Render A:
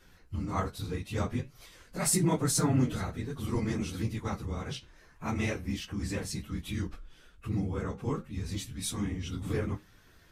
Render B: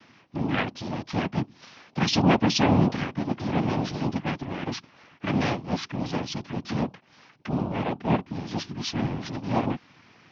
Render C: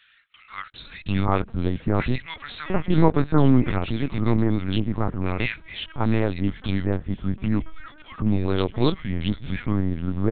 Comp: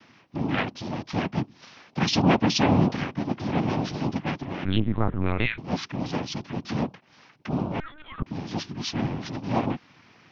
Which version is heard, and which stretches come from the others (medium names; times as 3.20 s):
B
4.65–5.58 s: from C
7.80–8.23 s: from C
not used: A